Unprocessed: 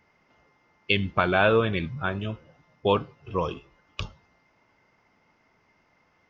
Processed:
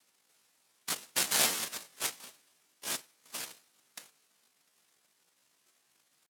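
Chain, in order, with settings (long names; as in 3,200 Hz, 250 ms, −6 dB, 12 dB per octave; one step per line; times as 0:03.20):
resonant band-pass 1,700 Hz, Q 2.6
cochlear-implant simulation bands 1
pitch shifter +6.5 semitones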